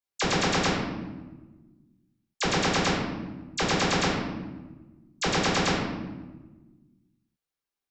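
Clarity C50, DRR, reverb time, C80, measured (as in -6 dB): 1.0 dB, -7.0 dB, 1.2 s, 3.5 dB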